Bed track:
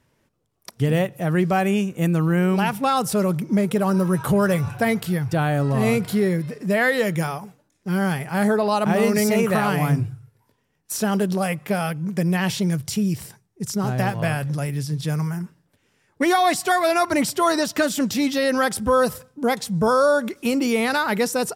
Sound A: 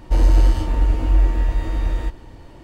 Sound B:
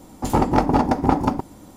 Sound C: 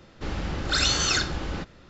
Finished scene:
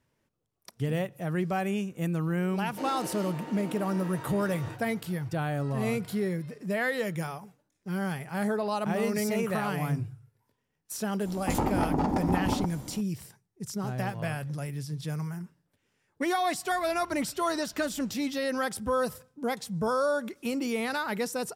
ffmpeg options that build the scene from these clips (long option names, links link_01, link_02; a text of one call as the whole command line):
ffmpeg -i bed.wav -i cue0.wav -i cue1.wav -i cue2.wav -filter_complex "[0:a]volume=-9.5dB[link_01];[1:a]highpass=frequency=260:width=0.5412,highpass=frequency=260:width=1.3066[link_02];[2:a]acompressor=threshold=-23dB:ratio=6:attack=3.2:release=140:knee=1:detection=peak[link_03];[3:a]acompressor=threshold=-36dB:ratio=6:attack=3.2:release=140:knee=1:detection=peak[link_04];[link_02]atrim=end=2.63,asetpts=PTS-STARTPTS,volume=-8.5dB,afade=type=in:duration=0.004:curve=hsin,afade=type=out:start_time=2.626:duration=0.004:curve=hsin,adelay=2660[link_05];[link_03]atrim=end=1.76,asetpts=PTS-STARTPTS,afade=type=in:duration=0.004:curve=hsin,afade=type=out:start_time=1.756:duration=0.004:curve=hsin,adelay=11250[link_06];[link_04]atrim=end=1.89,asetpts=PTS-STARTPTS,volume=-17dB,afade=type=in:duration=0.004:curve=hsin,afade=type=out:start_time=1.886:duration=0.004:curve=hsin,adelay=16500[link_07];[link_01][link_05][link_06][link_07]amix=inputs=4:normalize=0" out.wav